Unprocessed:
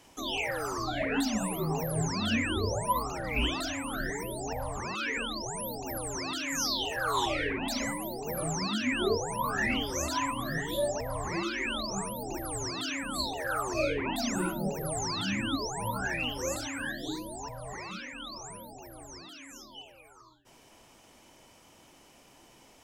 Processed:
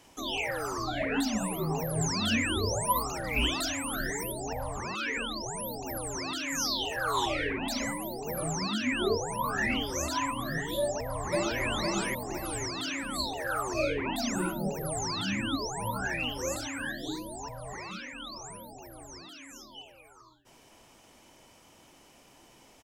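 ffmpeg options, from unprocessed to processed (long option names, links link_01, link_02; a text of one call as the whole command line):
ffmpeg -i in.wav -filter_complex "[0:a]asettb=1/sr,asplit=3[link_01][link_02][link_03];[link_01]atrim=end=2.014[link_04];[link_02]atrim=start=2.01:end=4.32,asetpts=PTS-STARTPTS,afade=type=in:duration=0.004:curve=qsin,afade=type=out:start_time=2.306:duration=0.004:curve=qsin,highshelf=frequency=4200:gain=8[link_05];[link_03]atrim=start=4.316[link_06];[link_04][link_05]acrossfade=duration=0.004:curve1=hsin:curve2=qsin[link_07];[link_07][link_06]acrossfade=duration=0.004:curve1=qsin:curve2=hsin,asplit=2[link_08][link_09];[link_09]afade=type=in:start_time=10.81:duration=0.01,afade=type=out:start_time=11.63:duration=0.01,aecho=0:1:510|1020|1530|2040|2550:0.944061|0.330421|0.115647|0.0404766|0.0141668[link_10];[link_08][link_10]amix=inputs=2:normalize=0" out.wav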